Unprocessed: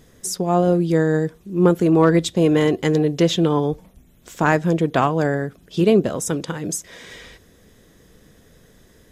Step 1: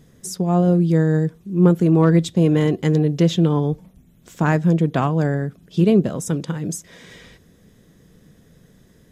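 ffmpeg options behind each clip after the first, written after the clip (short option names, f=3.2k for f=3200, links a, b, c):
-af "equalizer=f=160:w=1:g=9.5,volume=-4.5dB"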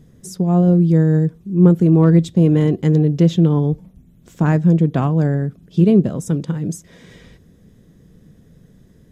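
-af "lowshelf=f=450:g=9.5,volume=-4.5dB"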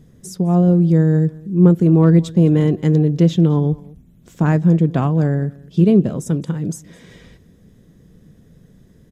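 -af "aecho=1:1:211:0.075"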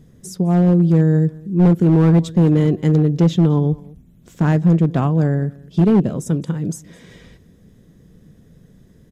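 -af "asoftclip=type=hard:threshold=-8dB"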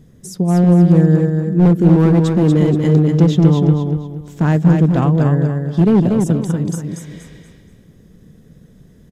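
-af "aecho=1:1:238|476|714|952:0.596|0.197|0.0649|0.0214,volume=1.5dB"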